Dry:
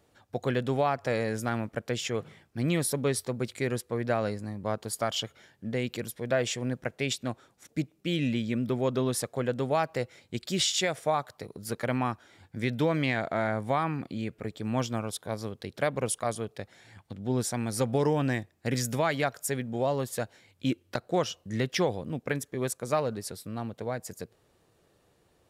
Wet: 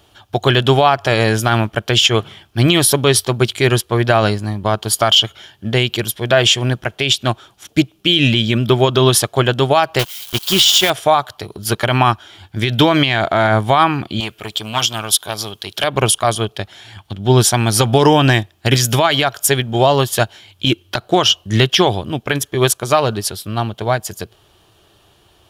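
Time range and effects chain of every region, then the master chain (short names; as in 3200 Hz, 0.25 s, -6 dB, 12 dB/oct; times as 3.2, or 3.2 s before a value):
9.99–10.9 switching spikes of -31.5 dBFS + requantised 6-bit, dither none + upward expander, over -42 dBFS
14.2–15.84 tilt +2.5 dB/oct + core saturation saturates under 2300 Hz
whole clip: thirty-one-band EQ 160 Hz -10 dB, 250 Hz -11 dB, 500 Hz -12 dB, 2000 Hz -6 dB, 3150 Hz +11 dB, 8000 Hz -5 dB; maximiser +22.5 dB; upward expander 1.5:1, over -21 dBFS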